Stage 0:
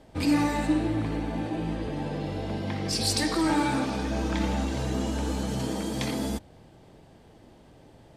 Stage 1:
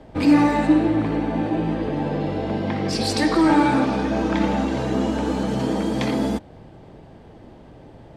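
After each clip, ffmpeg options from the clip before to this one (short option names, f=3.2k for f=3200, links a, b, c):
-filter_complex "[0:a]lowpass=f=1.9k:p=1,acrossover=split=150[a][b];[a]acompressor=threshold=-43dB:ratio=6[c];[c][b]amix=inputs=2:normalize=0,volume=9dB"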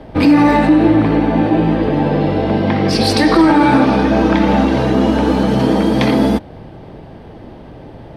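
-af "equalizer=f=7.3k:t=o:w=0.45:g=-11.5,alimiter=level_in=11dB:limit=-1dB:release=50:level=0:latency=1,volume=-1.5dB"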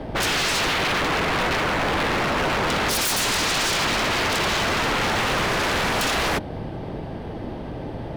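-af "aeval=exprs='0.0944*(abs(mod(val(0)/0.0944+3,4)-2)-1)':c=same,volume=3dB"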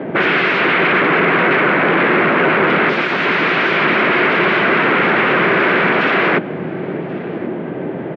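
-af "highpass=f=160:w=0.5412,highpass=f=160:w=1.3066,equalizer=f=170:t=q:w=4:g=4,equalizer=f=370:t=q:w=4:g=7,equalizer=f=840:t=q:w=4:g=-5,equalizer=f=1.5k:t=q:w=4:g=4,equalizer=f=2.2k:t=q:w=4:g=4,lowpass=f=2.6k:w=0.5412,lowpass=f=2.6k:w=1.3066,aecho=1:1:1082:0.075,volume=8dB"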